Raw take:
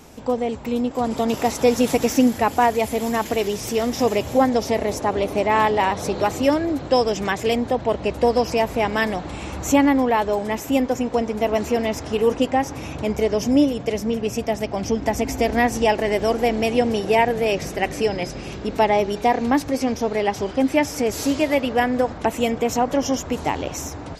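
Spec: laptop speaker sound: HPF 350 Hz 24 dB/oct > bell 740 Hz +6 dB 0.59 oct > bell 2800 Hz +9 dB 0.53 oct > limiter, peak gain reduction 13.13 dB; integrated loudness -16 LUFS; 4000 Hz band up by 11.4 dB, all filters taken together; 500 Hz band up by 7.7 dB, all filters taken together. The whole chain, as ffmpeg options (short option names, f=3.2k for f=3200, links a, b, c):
-af "highpass=f=350:w=0.5412,highpass=f=350:w=1.3066,equalizer=f=500:t=o:g=7,equalizer=f=740:t=o:w=0.59:g=6,equalizer=f=2.8k:t=o:w=0.53:g=9,equalizer=f=4k:t=o:g=8.5,volume=5.5dB,alimiter=limit=-6.5dB:level=0:latency=1"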